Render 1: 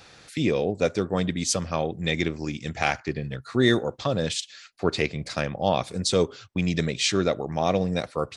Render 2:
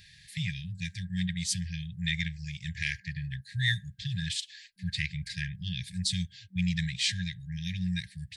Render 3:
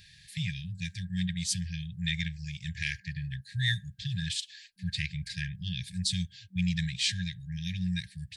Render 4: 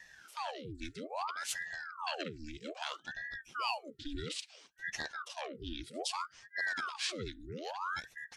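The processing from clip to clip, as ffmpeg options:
-af "afftfilt=real='re*(1-between(b*sr/4096,190,1600))':imag='im*(1-between(b*sr/4096,190,1600))':win_size=4096:overlap=0.75,equalizer=f=160:t=o:w=0.67:g=-4,equalizer=f=400:t=o:w=0.67:g=6,equalizer=f=2.5k:t=o:w=0.67:g=-5,equalizer=f=6.3k:t=o:w=0.67:g=-8,acontrast=38,volume=-5.5dB"
-af "equalizer=f=2k:w=7.1:g=-5.5"
-filter_complex "[0:a]acrossover=split=140[a][b];[a]acompressor=mode=upward:threshold=-38dB:ratio=2.5[c];[c][b]amix=inputs=2:normalize=0,aeval=exprs='val(0)*sin(2*PI*980*n/s+980*0.85/0.61*sin(2*PI*0.61*n/s))':c=same,volume=-4.5dB"

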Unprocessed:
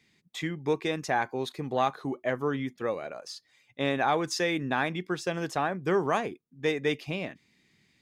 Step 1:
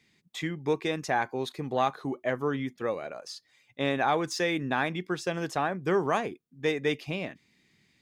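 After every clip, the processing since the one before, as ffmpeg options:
-af "deesser=0.65"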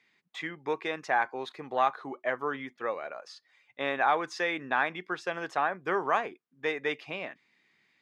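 -af "bandpass=f=1.3k:t=q:w=0.82:csg=0,volume=3dB"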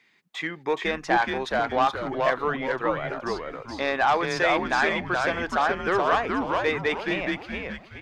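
-filter_complex "[0:a]aeval=exprs='0.251*(cos(1*acos(clip(val(0)/0.251,-1,1)))-cos(1*PI/2))+0.0316*(cos(5*acos(clip(val(0)/0.251,-1,1)))-cos(5*PI/2))':c=same,asplit=6[a][b][c][d][e][f];[b]adelay=422,afreqshift=-120,volume=-3dB[g];[c]adelay=844,afreqshift=-240,volume=-11.6dB[h];[d]adelay=1266,afreqshift=-360,volume=-20.3dB[i];[e]adelay=1688,afreqshift=-480,volume=-28.9dB[j];[f]adelay=2110,afreqshift=-600,volume=-37.5dB[k];[a][g][h][i][j][k]amix=inputs=6:normalize=0,volume=2dB"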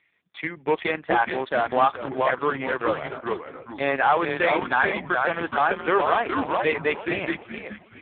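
-filter_complex "[0:a]asplit=2[a][b];[b]acrusher=bits=3:mix=0:aa=0.000001,volume=-5.5dB[c];[a][c]amix=inputs=2:normalize=0" -ar 8000 -c:a libopencore_amrnb -b:a 5150

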